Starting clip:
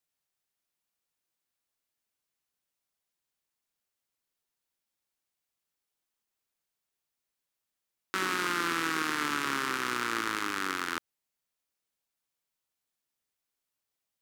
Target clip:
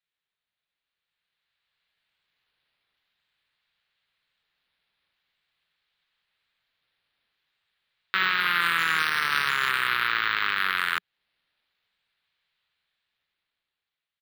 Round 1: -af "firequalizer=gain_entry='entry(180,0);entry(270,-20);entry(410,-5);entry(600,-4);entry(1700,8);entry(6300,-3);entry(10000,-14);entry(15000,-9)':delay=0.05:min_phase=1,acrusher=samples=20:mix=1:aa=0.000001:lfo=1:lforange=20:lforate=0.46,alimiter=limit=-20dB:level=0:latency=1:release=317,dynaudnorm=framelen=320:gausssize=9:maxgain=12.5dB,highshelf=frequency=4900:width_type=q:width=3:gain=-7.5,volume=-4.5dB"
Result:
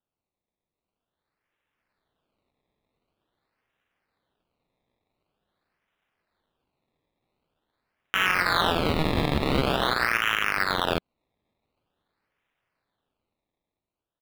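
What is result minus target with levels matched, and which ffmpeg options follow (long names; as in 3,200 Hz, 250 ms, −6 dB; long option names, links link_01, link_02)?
sample-and-hold swept by an LFO: distortion +29 dB
-af "firequalizer=gain_entry='entry(180,0);entry(270,-20);entry(410,-5);entry(600,-4);entry(1700,8);entry(6300,-3);entry(10000,-14);entry(15000,-9)':delay=0.05:min_phase=1,acrusher=samples=4:mix=1:aa=0.000001:lfo=1:lforange=4:lforate=0.46,alimiter=limit=-20dB:level=0:latency=1:release=317,dynaudnorm=framelen=320:gausssize=9:maxgain=12.5dB,highshelf=frequency=4900:width_type=q:width=3:gain=-7.5,volume=-4.5dB"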